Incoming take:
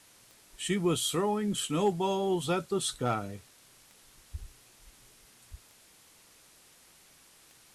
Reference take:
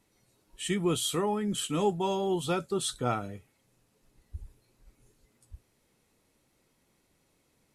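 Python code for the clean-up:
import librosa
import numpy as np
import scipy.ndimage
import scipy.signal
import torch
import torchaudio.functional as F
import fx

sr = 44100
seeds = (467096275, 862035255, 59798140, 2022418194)

y = fx.fix_declip(x, sr, threshold_db=-18.0)
y = fx.fix_declick_ar(y, sr, threshold=10.0)
y = fx.noise_reduce(y, sr, print_start_s=5.72, print_end_s=6.22, reduce_db=12.0)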